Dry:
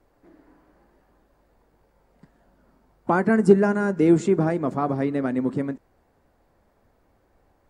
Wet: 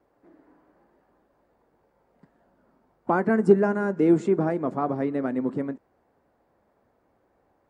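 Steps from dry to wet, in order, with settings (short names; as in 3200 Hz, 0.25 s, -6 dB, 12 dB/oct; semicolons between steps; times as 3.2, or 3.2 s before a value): HPF 230 Hz 6 dB/oct; high shelf 2400 Hz -11 dB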